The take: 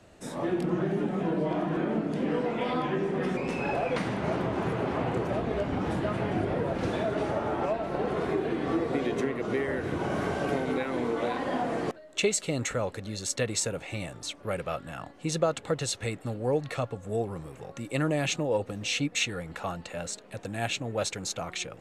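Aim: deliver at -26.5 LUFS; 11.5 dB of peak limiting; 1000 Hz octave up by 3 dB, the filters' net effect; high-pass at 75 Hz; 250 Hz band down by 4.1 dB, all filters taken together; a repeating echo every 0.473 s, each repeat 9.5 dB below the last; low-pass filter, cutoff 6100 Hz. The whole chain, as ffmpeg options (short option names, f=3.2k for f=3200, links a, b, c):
-af "highpass=75,lowpass=6.1k,equalizer=f=250:t=o:g=-6,equalizer=f=1k:t=o:g=4.5,alimiter=limit=-24dB:level=0:latency=1,aecho=1:1:473|946|1419|1892:0.335|0.111|0.0365|0.012,volume=7dB"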